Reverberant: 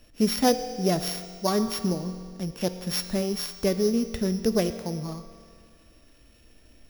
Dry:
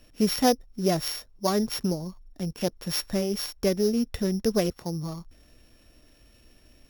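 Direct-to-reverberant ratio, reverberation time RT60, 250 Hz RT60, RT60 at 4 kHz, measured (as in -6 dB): 9.0 dB, 2.1 s, 2.1 s, 2.0 s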